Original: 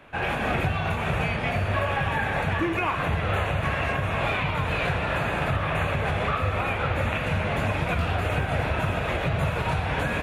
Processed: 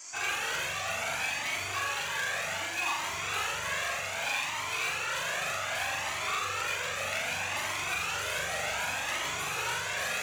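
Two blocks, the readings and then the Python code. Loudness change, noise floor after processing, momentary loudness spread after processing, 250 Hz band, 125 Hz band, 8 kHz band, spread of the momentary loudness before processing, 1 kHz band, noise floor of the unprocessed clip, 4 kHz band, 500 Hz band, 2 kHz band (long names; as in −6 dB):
−5.0 dB, −35 dBFS, 1 LU, −20.0 dB, −23.0 dB, +14.0 dB, 1 LU, −7.0 dB, −28 dBFS, +2.0 dB, −11.5 dB, −2.5 dB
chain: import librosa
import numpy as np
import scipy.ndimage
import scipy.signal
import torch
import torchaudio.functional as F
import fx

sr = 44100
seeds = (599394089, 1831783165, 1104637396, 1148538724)

p1 = np.minimum(x, 2.0 * 10.0 ** (-22.5 / 20.0) - x)
p2 = fx.dmg_noise_band(p1, sr, seeds[0], low_hz=4700.0, high_hz=7600.0, level_db=-49.0)
p3 = fx.highpass(p2, sr, hz=1400.0, slope=6)
p4 = fx.high_shelf(p3, sr, hz=4900.0, db=9.5)
p5 = fx.notch(p4, sr, hz=5200.0, q=10.0)
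p6 = p5 + fx.room_flutter(p5, sr, wall_m=7.2, rt60_s=0.76, dry=0)
p7 = fx.rider(p6, sr, range_db=10, speed_s=0.5)
y = fx.comb_cascade(p7, sr, direction='rising', hz=0.65)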